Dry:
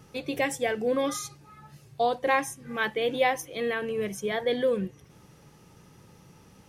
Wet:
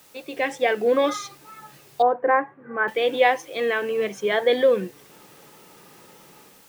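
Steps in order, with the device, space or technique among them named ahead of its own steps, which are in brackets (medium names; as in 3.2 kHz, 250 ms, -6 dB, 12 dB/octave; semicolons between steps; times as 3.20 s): dictaphone (band-pass 320–4100 Hz; level rider gain up to 11 dB; wow and flutter; white noise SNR 30 dB); 2.02–2.88 s: elliptic band-pass 100–1600 Hz, stop band 50 dB; trim -2.5 dB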